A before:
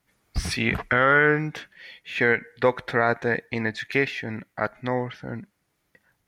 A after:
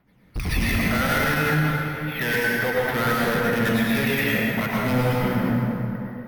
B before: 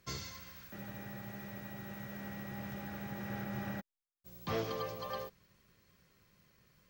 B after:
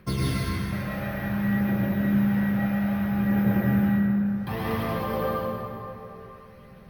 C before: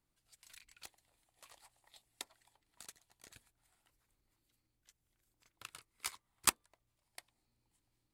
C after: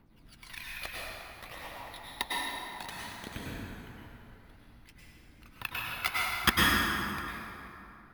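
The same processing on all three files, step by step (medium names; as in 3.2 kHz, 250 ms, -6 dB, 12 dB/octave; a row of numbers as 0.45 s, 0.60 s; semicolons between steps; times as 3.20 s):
rattle on loud lows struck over -26 dBFS, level -20 dBFS; low-pass 3.4 kHz 12 dB/octave; peaking EQ 210 Hz +6 dB 0.58 oct; gain riding within 4 dB 2 s; phaser 0.59 Hz, delay 1.7 ms, feedback 57%; hard clipper -24 dBFS; careless resampling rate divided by 3×, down filtered, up hold; plate-style reverb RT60 3 s, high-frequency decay 0.55×, pre-delay 90 ms, DRR -6 dB; loudness maximiser +11.5 dB; peak normalisation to -12 dBFS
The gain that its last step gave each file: -11.0 dB, -6.5 dB, -1.0 dB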